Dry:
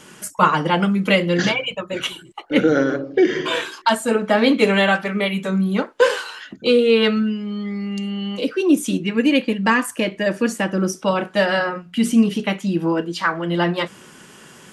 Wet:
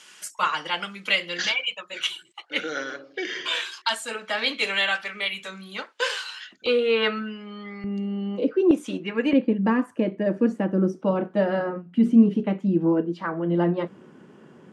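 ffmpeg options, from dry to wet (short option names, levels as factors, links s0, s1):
-af "asetnsamples=n=441:p=0,asendcmd='6.66 bandpass f 1300;7.84 bandpass f 370;8.71 bandpass f 950;9.33 bandpass f 280',bandpass=f=3900:t=q:w=0.74:csg=0"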